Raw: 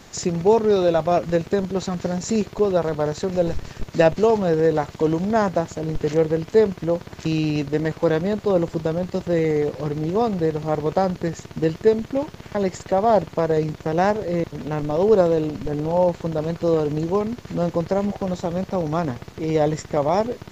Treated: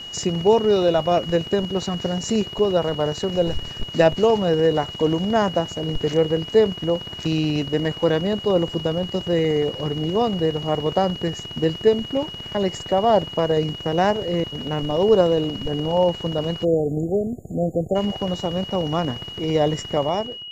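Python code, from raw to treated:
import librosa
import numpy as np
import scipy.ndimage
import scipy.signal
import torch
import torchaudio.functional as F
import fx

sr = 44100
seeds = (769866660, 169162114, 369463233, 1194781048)

y = fx.fade_out_tail(x, sr, length_s=0.57)
y = y + 10.0 ** (-33.0 / 20.0) * np.sin(2.0 * np.pi * 2900.0 * np.arange(len(y)) / sr)
y = fx.spec_erase(y, sr, start_s=16.64, length_s=1.32, low_hz=790.0, high_hz=6700.0)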